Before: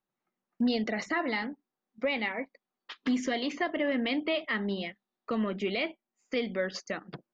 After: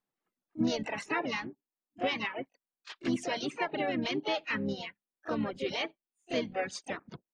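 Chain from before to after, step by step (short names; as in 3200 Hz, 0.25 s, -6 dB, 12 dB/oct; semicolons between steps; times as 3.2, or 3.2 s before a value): pre-echo 30 ms -15 dB; harmoniser -12 st -13 dB, -4 st -12 dB, +5 st -3 dB; reverb removal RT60 1.1 s; gain -3.5 dB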